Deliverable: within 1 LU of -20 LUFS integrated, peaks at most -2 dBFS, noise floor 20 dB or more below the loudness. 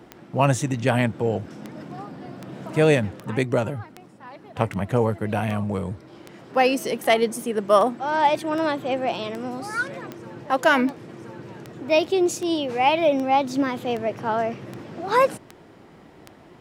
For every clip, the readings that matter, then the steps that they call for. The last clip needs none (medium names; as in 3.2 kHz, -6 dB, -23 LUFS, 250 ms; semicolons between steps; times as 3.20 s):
clicks found 22; loudness -23.0 LUFS; peak level -4.0 dBFS; loudness target -20.0 LUFS
-> de-click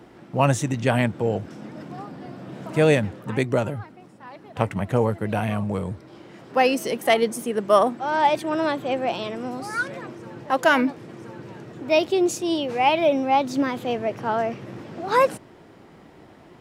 clicks found 0; loudness -23.0 LUFS; peak level -4.0 dBFS; loudness target -20.0 LUFS
-> trim +3 dB; peak limiter -2 dBFS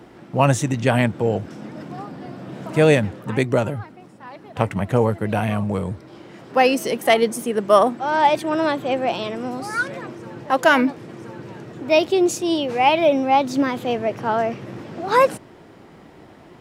loudness -20.0 LUFS; peak level -2.0 dBFS; noise floor -46 dBFS